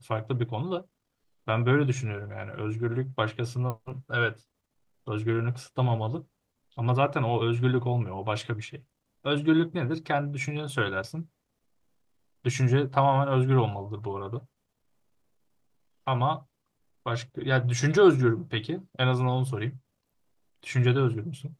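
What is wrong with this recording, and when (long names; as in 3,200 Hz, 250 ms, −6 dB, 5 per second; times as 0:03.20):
0:03.70: click −20 dBFS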